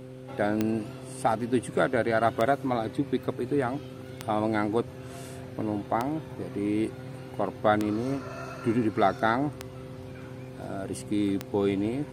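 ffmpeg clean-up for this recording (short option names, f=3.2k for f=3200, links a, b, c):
-af "adeclick=t=4,bandreject=f=129:t=h:w=4,bandreject=f=258:t=h:w=4,bandreject=f=387:t=h:w=4,bandreject=f=516:t=h:w=4"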